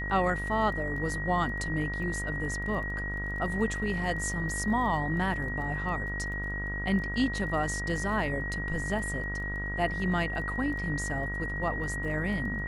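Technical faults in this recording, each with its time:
mains buzz 50 Hz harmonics 33 −36 dBFS
surface crackle 17 per second −40 dBFS
whistle 1,900 Hz −34 dBFS

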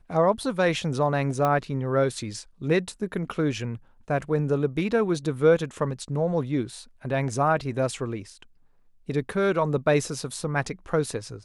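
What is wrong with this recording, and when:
0:01.45: click −13 dBFS

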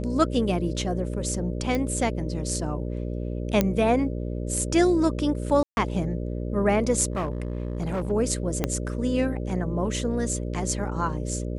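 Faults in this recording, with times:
mains buzz 60 Hz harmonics 10 −30 dBFS
0:01.75: click −15 dBFS
0:03.61: click −7 dBFS
0:05.63–0:05.77: drop-out 141 ms
0:07.12–0:08.12: clipping −23.5 dBFS
0:08.64: click −9 dBFS

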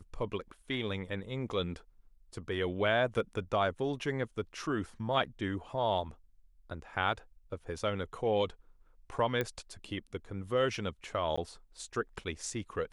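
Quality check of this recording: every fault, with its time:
0:09.41: click −19 dBFS
0:11.36–0:11.38: drop-out 15 ms

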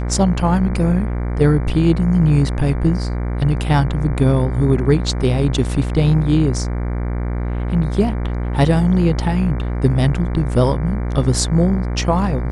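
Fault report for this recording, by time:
mains buzz 60 Hz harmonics 39 −21 dBFS

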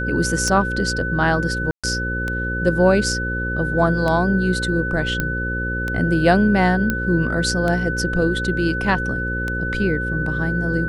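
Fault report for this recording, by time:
mains buzz 60 Hz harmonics 9 −26 dBFS
scratch tick 33 1/3 rpm −11 dBFS
whistle 1,500 Hz −24 dBFS
0:01.71–0:01.84: drop-out 126 ms
0:05.20: click −7 dBFS
0:06.90: click −7 dBFS

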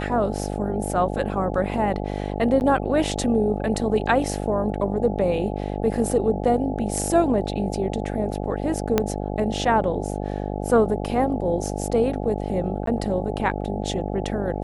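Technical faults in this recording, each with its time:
mains buzz 50 Hz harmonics 17 −28 dBFS
0:02.60–0:02.61: drop-out 9.6 ms
0:08.98: click −5 dBFS
0:12.86–0:12.87: drop-out 13 ms

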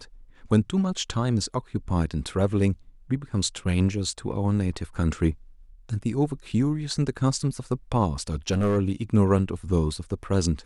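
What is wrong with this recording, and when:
0:08.31–0:08.78: clipping −19 dBFS

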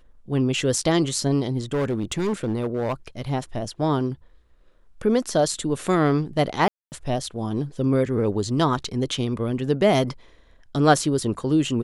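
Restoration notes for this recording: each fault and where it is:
0:01.73–0:02.93: clipping −20 dBFS
0:06.68–0:06.92: drop-out 239 ms

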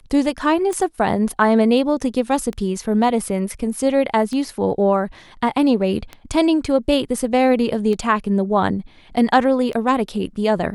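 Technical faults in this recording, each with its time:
scratch tick 33 1/3 rpm −15 dBFS

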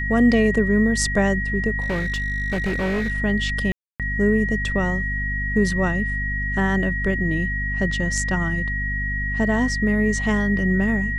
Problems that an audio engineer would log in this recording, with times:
mains hum 50 Hz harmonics 5 −27 dBFS
whistle 1,900 Hz −25 dBFS
0:01.80–0:03.12: clipping −19.5 dBFS
0:03.72–0:04.00: drop-out 277 ms

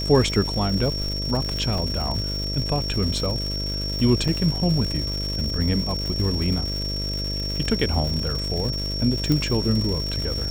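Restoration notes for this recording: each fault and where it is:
mains buzz 50 Hz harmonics 13 −29 dBFS
surface crackle 300 per second −28 dBFS
whistle 5,500 Hz −28 dBFS
0:01.78: drop-out 3.4 ms
0:04.28–0:04.29: drop-out 5 ms
0:09.32: click −9 dBFS

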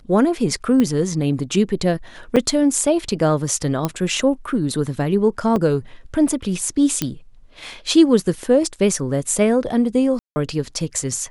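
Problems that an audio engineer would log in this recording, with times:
0:00.80: click −8 dBFS
0:02.36–0:02.37: drop-out 5.9 ms
0:03.85: click −7 dBFS
0:05.56: drop-out 2.1 ms
0:07.02: click −5 dBFS
0:10.19–0:10.36: drop-out 170 ms

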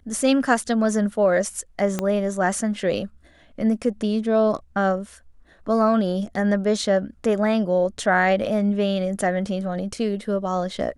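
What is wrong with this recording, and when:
0:01.99: click −10 dBFS

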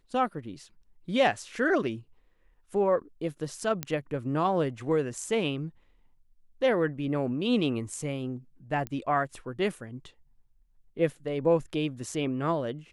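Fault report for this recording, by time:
0:03.83: click −13 dBFS
0:08.87: click −20 dBFS

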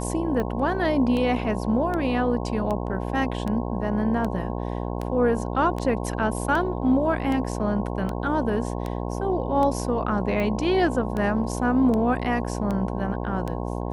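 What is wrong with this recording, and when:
mains buzz 60 Hz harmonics 18 −29 dBFS
scratch tick 78 rpm −17 dBFS

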